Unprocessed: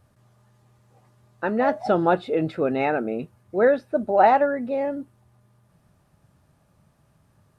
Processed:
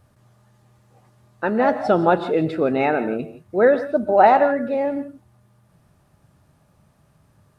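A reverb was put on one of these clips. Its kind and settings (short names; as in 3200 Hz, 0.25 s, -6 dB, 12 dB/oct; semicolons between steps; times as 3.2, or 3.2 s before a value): non-linear reverb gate 0.19 s rising, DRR 11.5 dB; gain +3 dB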